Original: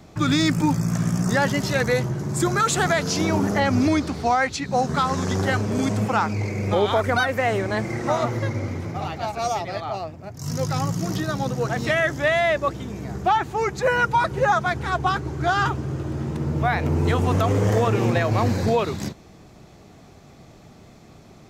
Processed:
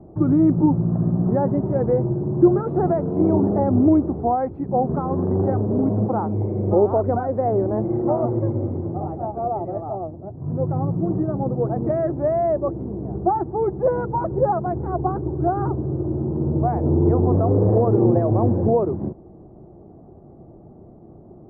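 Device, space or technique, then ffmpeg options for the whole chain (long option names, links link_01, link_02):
under water: -af "lowpass=frequency=800:width=0.5412,lowpass=frequency=800:width=1.3066,equalizer=frequency=350:width_type=o:width=0.28:gain=8.5,volume=2dB"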